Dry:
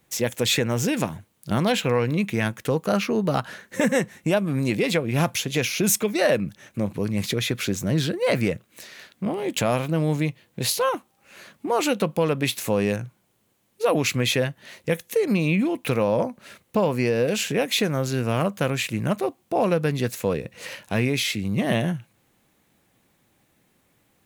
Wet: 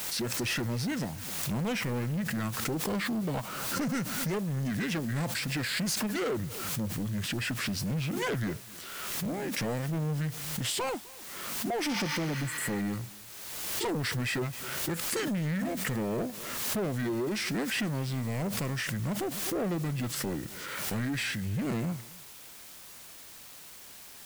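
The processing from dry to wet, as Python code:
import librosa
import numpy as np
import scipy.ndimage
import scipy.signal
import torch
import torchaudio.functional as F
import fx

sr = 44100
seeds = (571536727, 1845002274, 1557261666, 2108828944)

p1 = fx.formant_shift(x, sr, semitones=-5)
p2 = fx.spec_repair(p1, sr, seeds[0], start_s=11.92, length_s=0.87, low_hz=840.0, high_hz=6800.0, source='both')
p3 = fx.quant_dither(p2, sr, seeds[1], bits=6, dither='triangular')
p4 = p2 + (p3 * librosa.db_to_amplitude(-4.0))
p5 = 10.0 ** (-19.0 / 20.0) * np.tanh(p4 / 10.0 ** (-19.0 / 20.0))
p6 = p5 + 10.0 ** (-23.5 / 20.0) * np.pad(p5, (int(257 * sr / 1000.0), 0))[:len(p5)]
p7 = fx.pre_swell(p6, sr, db_per_s=31.0)
y = p7 * librosa.db_to_amplitude(-8.5)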